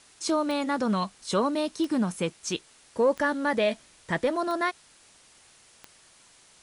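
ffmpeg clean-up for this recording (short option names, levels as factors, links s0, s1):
-af "adeclick=t=4,afwtdn=0.002"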